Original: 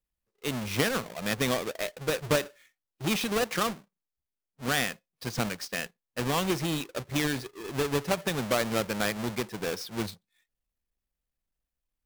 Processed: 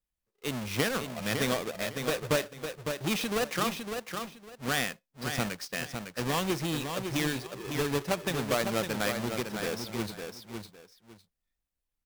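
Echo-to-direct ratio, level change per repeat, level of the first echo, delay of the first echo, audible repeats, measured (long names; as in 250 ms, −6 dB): −6.5 dB, −13.0 dB, −6.5 dB, 556 ms, 2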